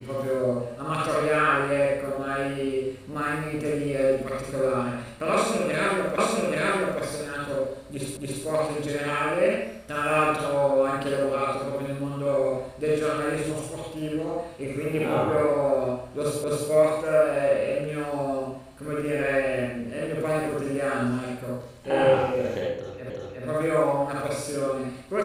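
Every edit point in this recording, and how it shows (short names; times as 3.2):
6.18 repeat of the last 0.83 s
8.17 repeat of the last 0.28 s
16.44 repeat of the last 0.26 s
23.1 repeat of the last 0.36 s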